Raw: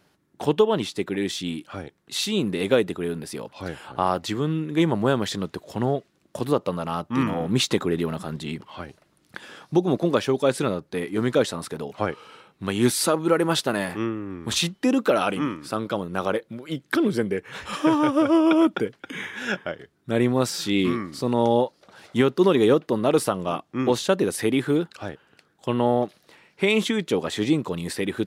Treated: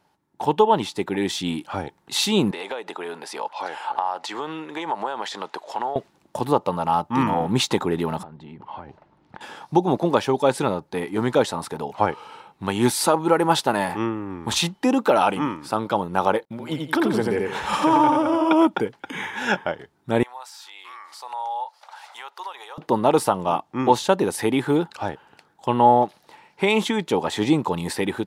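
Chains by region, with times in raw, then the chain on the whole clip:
2.51–5.96 s: high-pass 590 Hz + compression 8:1, threshold -32 dBFS + distance through air 51 m
8.23–9.41 s: compression 5:1, threshold -40 dBFS + tape spacing loss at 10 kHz 29 dB
16.45–18.51 s: expander -52 dBFS + feedback delay 87 ms, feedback 31%, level -4 dB + compression 2:1, threshold -22 dBFS
20.23–22.78 s: high-pass 770 Hz 24 dB/octave + compression 2.5:1, threshold -49 dBFS
whole clip: level rider; peaking EQ 870 Hz +14 dB 0.42 oct; trim -6 dB

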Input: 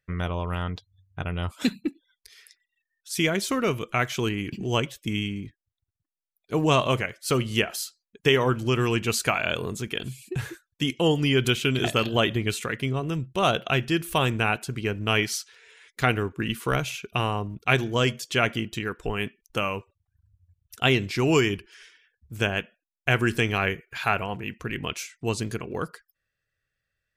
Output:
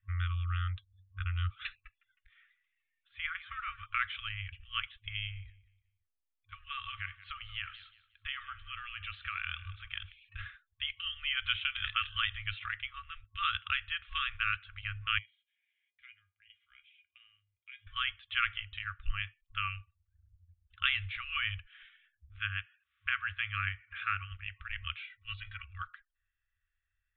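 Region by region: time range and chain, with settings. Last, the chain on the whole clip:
1.75–3.86 s: low-pass 2 kHz + frequency-shifting echo 157 ms, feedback 59%, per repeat +99 Hz, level -17 dB
5.31–10.12 s: compression 4:1, threshold -25 dBFS + feedback delay 180 ms, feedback 31%, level -17 dB
15.18–17.87 s: vowel filter i + feedback comb 410 Hz, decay 0.17 s, mix 80%
22.38–24.32 s: high-pass 95 Hz + upward compressor, threshold -33 dBFS + distance through air 210 m
25.03–25.64 s: resonant low shelf 110 Hz -7 dB, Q 1.5 + band-stop 1.4 kHz, Q 14 + comb 2.1 ms, depth 90%
whole clip: steep low-pass 3.6 kHz 96 dB/octave; FFT band-reject 100–1100 Hz; bass shelf 64 Hz +11.5 dB; trim -5.5 dB

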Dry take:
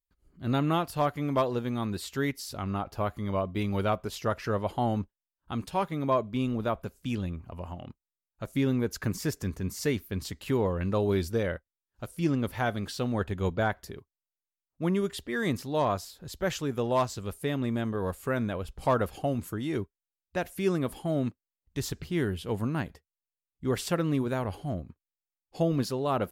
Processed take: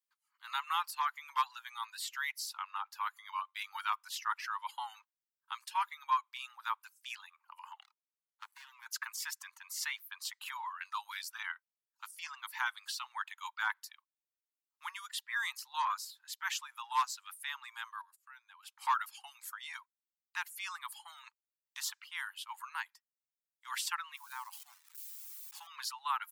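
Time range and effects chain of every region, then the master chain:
7.81–8.86 s: median filter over 25 samples + compression 3:1, threshold -30 dBFS
18.01–18.63 s: gate -41 dBFS, range -24 dB + compression 4:1, threshold -46 dBFS
24.16–25.67 s: zero-crossing glitches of -29.5 dBFS + ladder high-pass 680 Hz, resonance 40%
whole clip: reverb removal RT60 0.85 s; steep high-pass 880 Hz 96 dB/octave

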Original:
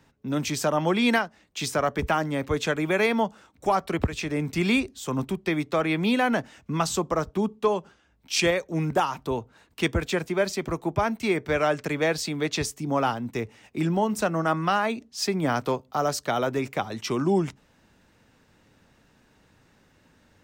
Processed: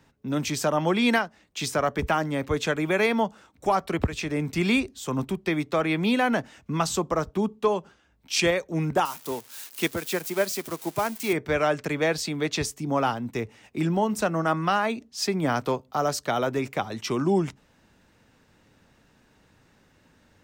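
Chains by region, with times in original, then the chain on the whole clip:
9.05–11.33 s: zero-crossing glitches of -23 dBFS + high-pass 170 Hz + upward expansion, over -39 dBFS
whole clip: none

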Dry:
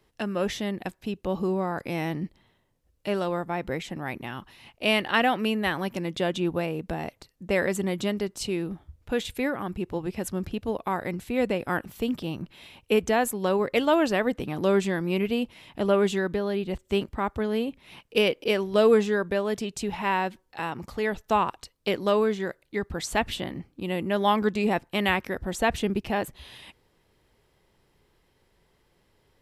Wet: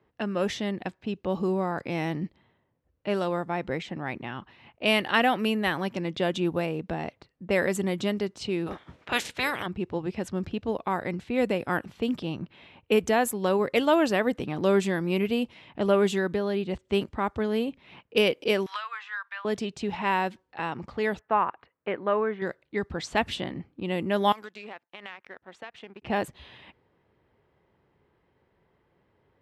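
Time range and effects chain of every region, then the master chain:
8.66–9.65 s: spectral peaks clipped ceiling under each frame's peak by 27 dB + band-stop 4.7 kHz, Q 27 + tape noise reduction on one side only encoder only
18.66–19.45 s: steep high-pass 1.1 kHz + treble shelf 2.9 kHz -10 dB + three bands compressed up and down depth 100%
21.19–22.42 s: low-pass 1.9 kHz 24 dB/octave + tilt EQ +3 dB/octave
24.32–26.02 s: high-pass 1.3 kHz 6 dB/octave + compression, threshold -32 dBFS + power-law waveshaper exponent 1.4
whole clip: level-controlled noise filter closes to 1.9 kHz, open at -21 dBFS; high-pass 73 Hz

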